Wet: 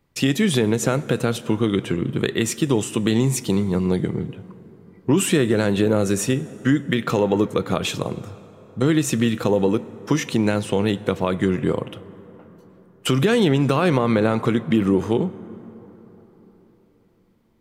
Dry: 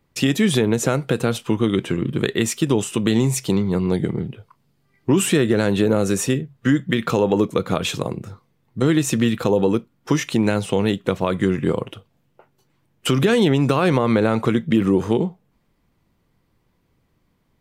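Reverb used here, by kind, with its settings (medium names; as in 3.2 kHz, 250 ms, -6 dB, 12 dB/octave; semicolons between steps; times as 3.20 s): plate-style reverb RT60 4.4 s, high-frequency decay 0.45×, DRR 16.5 dB; trim -1 dB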